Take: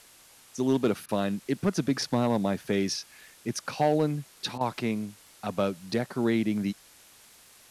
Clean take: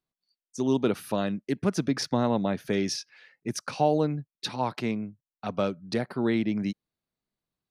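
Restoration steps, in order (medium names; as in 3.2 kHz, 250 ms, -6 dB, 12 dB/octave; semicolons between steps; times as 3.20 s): clip repair -16 dBFS; de-click; interpolate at 1.06/4.58 s, 26 ms; noise print and reduce 30 dB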